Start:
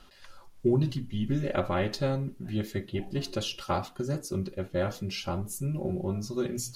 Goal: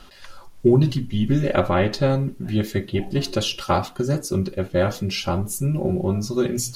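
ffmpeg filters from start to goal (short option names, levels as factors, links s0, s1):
-filter_complex "[0:a]asettb=1/sr,asplit=3[s0][s1][s2];[s0]atrim=end=1.704[s3];[s1]atrim=start=1.7:end=2.1,asetpts=PTS-STARTPTS,afade=t=in:d=0.004:c=qsin,afade=t=out:st=0.396:d=0.004:c=qsin,highshelf=f=5100:g=-6.5[s4];[s2]atrim=start=2.096[s5];[s3][s4]acrossfade=d=0.004:c1=hsin:c2=qsin[s6];[s6][s5]acrossfade=d=0.004:c1=qsin:c2=hsin,volume=2.82"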